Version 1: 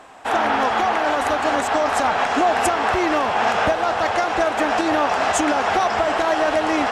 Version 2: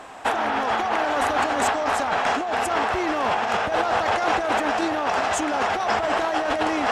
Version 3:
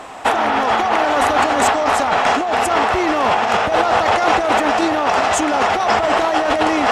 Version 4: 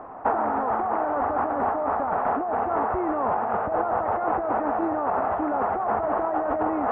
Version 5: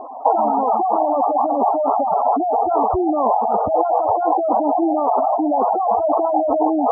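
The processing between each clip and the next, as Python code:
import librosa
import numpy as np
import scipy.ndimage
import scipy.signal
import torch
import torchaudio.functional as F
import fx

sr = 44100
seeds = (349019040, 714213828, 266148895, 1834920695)

y1 = fx.over_compress(x, sr, threshold_db=-23.0, ratio=-1.0)
y2 = fx.notch(y1, sr, hz=1600.0, q=18.0)
y2 = y2 * librosa.db_to_amplitude(7.0)
y3 = scipy.signal.sosfilt(scipy.signal.butter(4, 1300.0, 'lowpass', fs=sr, output='sos'), y2)
y3 = fx.rider(y3, sr, range_db=10, speed_s=0.5)
y3 = y3 * librosa.db_to_amplitude(-8.0)
y4 = fx.spec_gate(y3, sr, threshold_db=-10, keep='strong')
y4 = scipy.signal.sosfilt(scipy.signal.butter(4, 1100.0, 'lowpass', fs=sr, output='sos'), y4)
y4 = y4 * librosa.db_to_amplitude(9.0)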